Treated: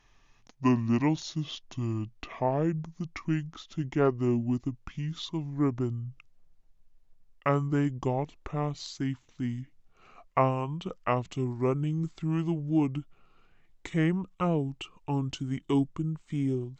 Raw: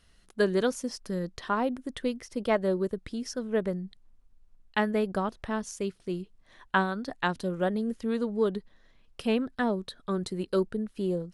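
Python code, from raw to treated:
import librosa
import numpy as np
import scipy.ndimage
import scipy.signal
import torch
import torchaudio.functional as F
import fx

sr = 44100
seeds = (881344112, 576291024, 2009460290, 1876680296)

y = fx.speed_glide(x, sr, from_pct=61, to_pct=74)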